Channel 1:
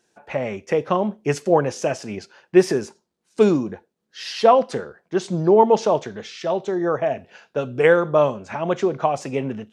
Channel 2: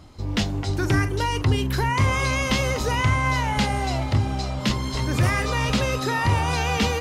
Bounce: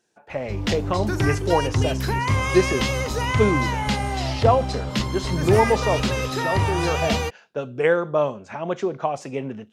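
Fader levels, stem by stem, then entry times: −4.0, −1.0 decibels; 0.00, 0.30 seconds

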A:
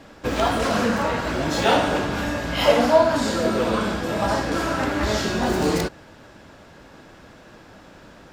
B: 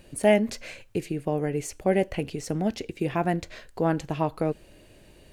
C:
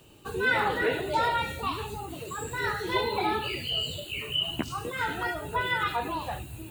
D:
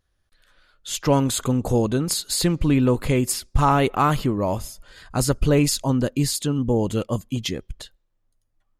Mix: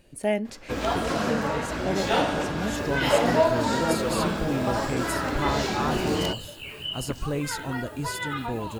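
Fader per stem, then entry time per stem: −5.0, −5.5, −4.5, −11.0 decibels; 0.45, 0.00, 2.50, 1.80 seconds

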